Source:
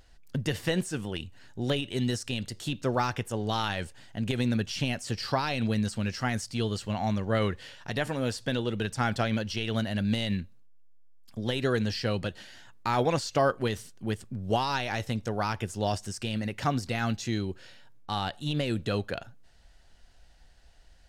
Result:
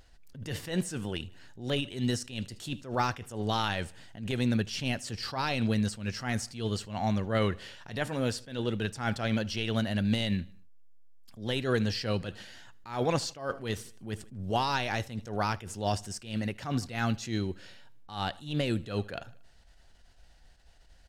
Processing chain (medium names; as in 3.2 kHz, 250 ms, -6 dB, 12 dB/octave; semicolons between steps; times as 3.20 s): feedback delay 77 ms, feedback 51%, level -23.5 dB; attacks held to a fixed rise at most 130 dB/s